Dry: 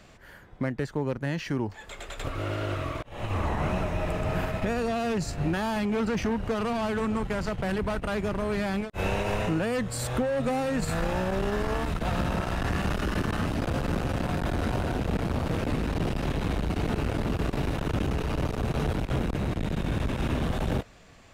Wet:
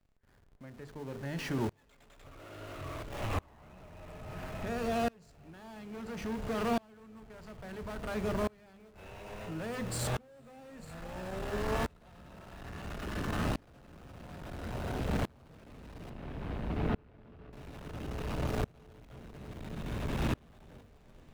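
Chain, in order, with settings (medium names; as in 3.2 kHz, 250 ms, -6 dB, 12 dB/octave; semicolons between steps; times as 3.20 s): hum notches 50/100/150/200/250/300/350/400/450/500 Hz; in parallel at -8 dB: Schmitt trigger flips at -45.5 dBFS; 16.10–17.53 s: on the sum: distance through air 310 m; echo that smears into a reverb 451 ms, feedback 70%, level -16 dB; on a send at -15 dB: reverberation RT60 1.0 s, pre-delay 4 ms; on the sum: sawtooth tremolo in dB swelling 0.59 Hz, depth 31 dB; trim -3.5 dB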